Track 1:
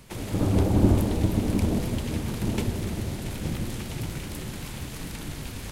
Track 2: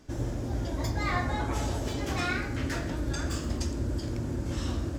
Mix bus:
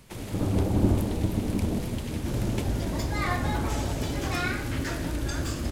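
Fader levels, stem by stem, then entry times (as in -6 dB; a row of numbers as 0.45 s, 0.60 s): -3.0 dB, +1.0 dB; 0.00 s, 2.15 s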